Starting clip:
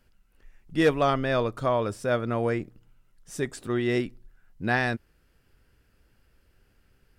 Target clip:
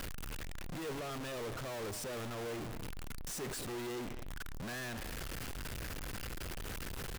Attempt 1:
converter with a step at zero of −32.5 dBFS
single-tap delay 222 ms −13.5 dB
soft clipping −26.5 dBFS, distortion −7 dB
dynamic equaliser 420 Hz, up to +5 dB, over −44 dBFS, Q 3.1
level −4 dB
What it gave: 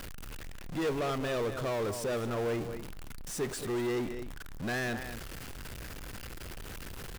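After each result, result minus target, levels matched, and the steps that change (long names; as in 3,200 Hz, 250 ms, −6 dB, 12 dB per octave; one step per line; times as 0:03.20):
converter with a step at zero: distortion −6 dB; soft clipping: distortion −4 dB
change: converter with a step at zero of −25 dBFS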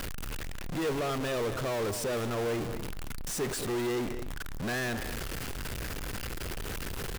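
soft clipping: distortion −4 dB
change: soft clipping −37 dBFS, distortion −3 dB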